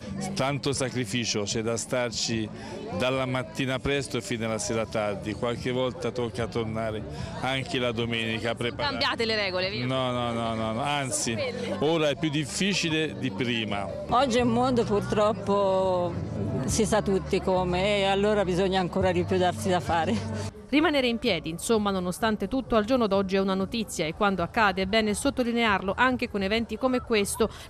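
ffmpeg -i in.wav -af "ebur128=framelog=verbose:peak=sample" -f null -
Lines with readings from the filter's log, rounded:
Integrated loudness:
  I:         -26.5 LUFS
  Threshold: -36.5 LUFS
Loudness range:
  LRA:         4.0 LU
  Threshold: -46.5 LUFS
  LRA low:   -29.1 LUFS
  LRA high:  -25.1 LUFS
Sample peak:
  Peak:       -9.0 dBFS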